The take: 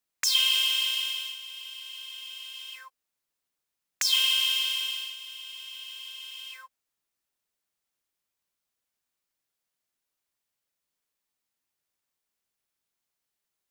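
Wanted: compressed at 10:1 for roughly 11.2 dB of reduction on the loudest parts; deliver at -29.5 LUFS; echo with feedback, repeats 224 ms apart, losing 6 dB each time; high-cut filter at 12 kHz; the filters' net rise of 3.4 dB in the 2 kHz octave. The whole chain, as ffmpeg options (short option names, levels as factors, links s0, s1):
-af "lowpass=12000,equalizer=f=2000:t=o:g=5,acompressor=threshold=0.0355:ratio=10,aecho=1:1:224|448|672|896|1120|1344:0.501|0.251|0.125|0.0626|0.0313|0.0157,volume=1.12"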